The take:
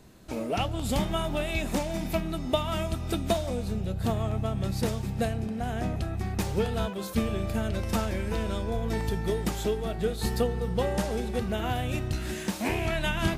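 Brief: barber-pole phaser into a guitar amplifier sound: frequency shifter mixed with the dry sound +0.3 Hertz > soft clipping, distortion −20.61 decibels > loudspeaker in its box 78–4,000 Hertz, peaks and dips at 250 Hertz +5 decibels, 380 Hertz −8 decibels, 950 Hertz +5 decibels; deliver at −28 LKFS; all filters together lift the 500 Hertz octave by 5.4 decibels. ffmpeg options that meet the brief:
ffmpeg -i in.wav -filter_complex "[0:a]equalizer=frequency=500:width_type=o:gain=8.5,asplit=2[link_01][link_02];[link_02]afreqshift=0.3[link_03];[link_01][link_03]amix=inputs=2:normalize=1,asoftclip=threshold=-14.5dB,highpass=78,equalizer=frequency=250:width_type=q:width=4:gain=5,equalizer=frequency=380:width_type=q:width=4:gain=-8,equalizer=frequency=950:width_type=q:width=4:gain=5,lowpass=frequency=4000:width=0.5412,lowpass=frequency=4000:width=1.3066,volume=2.5dB" out.wav

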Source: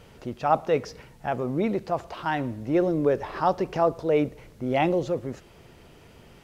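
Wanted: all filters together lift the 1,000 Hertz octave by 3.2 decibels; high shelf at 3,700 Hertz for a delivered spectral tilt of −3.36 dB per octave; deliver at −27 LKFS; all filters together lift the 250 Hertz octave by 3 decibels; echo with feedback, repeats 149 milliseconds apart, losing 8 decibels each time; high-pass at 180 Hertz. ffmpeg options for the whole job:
ffmpeg -i in.wav -af "highpass=180,equalizer=frequency=250:width_type=o:gain=5,equalizer=frequency=1000:width_type=o:gain=4.5,highshelf=frequency=3700:gain=-6,aecho=1:1:149|298|447|596|745:0.398|0.159|0.0637|0.0255|0.0102,volume=-3.5dB" out.wav

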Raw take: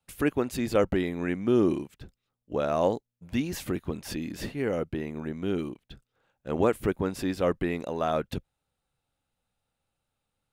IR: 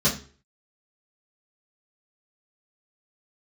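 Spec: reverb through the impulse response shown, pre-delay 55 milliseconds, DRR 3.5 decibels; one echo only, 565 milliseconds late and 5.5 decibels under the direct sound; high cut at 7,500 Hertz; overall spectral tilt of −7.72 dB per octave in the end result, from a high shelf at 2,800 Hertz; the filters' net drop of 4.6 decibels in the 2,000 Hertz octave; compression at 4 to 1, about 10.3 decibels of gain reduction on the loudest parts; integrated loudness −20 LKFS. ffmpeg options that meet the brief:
-filter_complex "[0:a]lowpass=7500,equalizer=frequency=2000:width_type=o:gain=-3.5,highshelf=frequency=2800:gain=-6,acompressor=threshold=-31dB:ratio=4,aecho=1:1:565:0.531,asplit=2[link_01][link_02];[1:a]atrim=start_sample=2205,adelay=55[link_03];[link_02][link_03]afir=irnorm=-1:irlink=0,volume=-17dB[link_04];[link_01][link_04]amix=inputs=2:normalize=0,volume=11dB"

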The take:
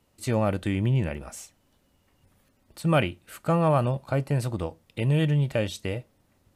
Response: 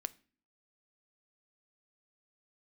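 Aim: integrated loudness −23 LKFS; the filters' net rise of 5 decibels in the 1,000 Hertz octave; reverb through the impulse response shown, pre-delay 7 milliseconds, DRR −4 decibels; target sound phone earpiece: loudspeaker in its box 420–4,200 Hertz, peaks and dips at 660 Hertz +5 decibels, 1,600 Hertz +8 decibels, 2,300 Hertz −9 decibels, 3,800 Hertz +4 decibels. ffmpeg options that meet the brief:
-filter_complex "[0:a]equalizer=frequency=1000:width_type=o:gain=4.5,asplit=2[link_01][link_02];[1:a]atrim=start_sample=2205,adelay=7[link_03];[link_02][link_03]afir=irnorm=-1:irlink=0,volume=5.5dB[link_04];[link_01][link_04]amix=inputs=2:normalize=0,highpass=420,equalizer=frequency=660:width_type=q:width=4:gain=5,equalizer=frequency=1600:width_type=q:width=4:gain=8,equalizer=frequency=2300:width_type=q:width=4:gain=-9,equalizer=frequency=3800:width_type=q:width=4:gain=4,lowpass=frequency=4200:width=0.5412,lowpass=frequency=4200:width=1.3066,volume=-1dB"

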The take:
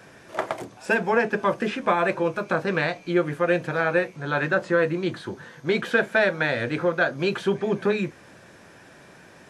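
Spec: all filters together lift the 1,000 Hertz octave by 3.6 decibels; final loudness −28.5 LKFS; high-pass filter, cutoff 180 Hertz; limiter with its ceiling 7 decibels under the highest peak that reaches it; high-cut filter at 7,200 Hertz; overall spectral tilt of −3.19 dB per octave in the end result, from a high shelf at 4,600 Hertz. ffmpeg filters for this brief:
ffmpeg -i in.wav -af "highpass=180,lowpass=7200,equalizer=frequency=1000:width_type=o:gain=4.5,highshelf=frequency=4600:gain=3.5,volume=-3.5dB,alimiter=limit=-15.5dB:level=0:latency=1" out.wav

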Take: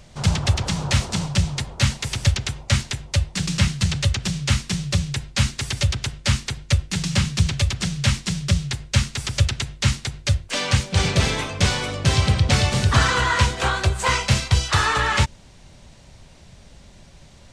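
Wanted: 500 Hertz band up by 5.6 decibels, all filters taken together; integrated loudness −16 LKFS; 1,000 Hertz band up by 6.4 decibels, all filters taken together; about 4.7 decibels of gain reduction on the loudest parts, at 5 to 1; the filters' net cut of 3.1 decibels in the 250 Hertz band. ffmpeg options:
ffmpeg -i in.wav -af "equalizer=frequency=250:width_type=o:gain=-7.5,equalizer=frequency=500:width_type=o:gain=6.5,equalizer=frequency=1000:width_type=o:gain=6.5,acompressor=threshold=-17dB:ratio=5,volume=7.5dB" out.wav

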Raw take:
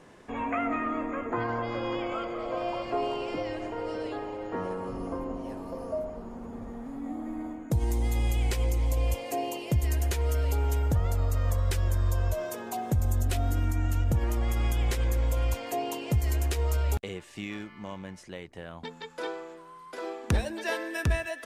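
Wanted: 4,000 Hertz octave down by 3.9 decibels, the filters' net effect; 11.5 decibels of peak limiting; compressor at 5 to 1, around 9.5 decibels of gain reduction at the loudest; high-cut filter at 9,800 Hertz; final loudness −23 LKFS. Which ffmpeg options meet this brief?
ffmpeg -i in.wav -af "lowpass=9800,equalizer=frequency=4000:width_type=o:gain=-5.5,acompressor=threshold=-33dB:ratio=5,volume=17dB,alimiter=limit=-13.5dB:level=0:latency=1" out.wav

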